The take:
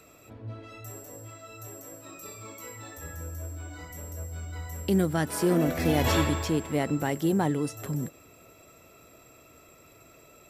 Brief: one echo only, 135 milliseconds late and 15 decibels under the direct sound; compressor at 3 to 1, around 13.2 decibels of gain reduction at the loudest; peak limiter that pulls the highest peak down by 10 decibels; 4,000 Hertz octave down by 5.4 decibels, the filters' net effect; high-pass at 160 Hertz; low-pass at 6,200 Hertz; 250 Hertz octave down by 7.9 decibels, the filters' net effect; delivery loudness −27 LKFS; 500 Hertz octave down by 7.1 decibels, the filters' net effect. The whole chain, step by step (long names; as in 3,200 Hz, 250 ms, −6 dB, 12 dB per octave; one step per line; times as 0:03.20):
high-pass filter 160 Hz
low-pass filter 6,200 Hz
parametric band 250 Hz −8 dB
parametric band 500 Hz −6.5 dB
parametric band 4,000 Hz −6.5 dB
downward compressor 3 to 1, threshold −45 dBFS
brickwall limiter −38.5 dBFS
single-tap delay 135 ms −15 dB
level +22.5 dB